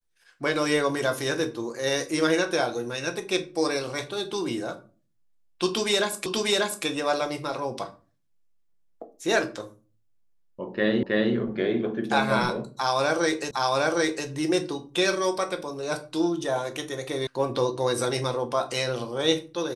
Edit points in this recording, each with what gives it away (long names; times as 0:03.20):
0:06.26: the same again, the last 0.59 s
0:11.03: the same again, the last 0.32 s
0:13.51: the same again, the last 0.76 s
0:17.27: cut off before it has died away